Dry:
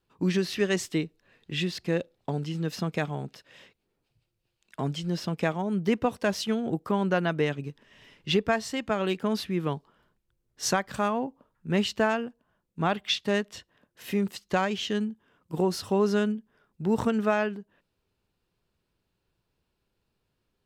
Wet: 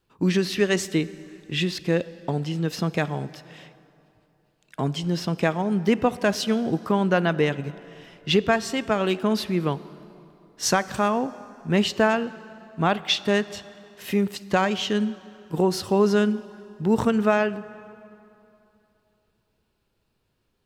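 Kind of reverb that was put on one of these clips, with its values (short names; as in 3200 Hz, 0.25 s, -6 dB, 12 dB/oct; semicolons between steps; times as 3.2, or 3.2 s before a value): plate-style reverb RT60 3 s, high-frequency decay 0.7×, pre-delay 0 ms, DRR 16 dB; gain +4.5 dB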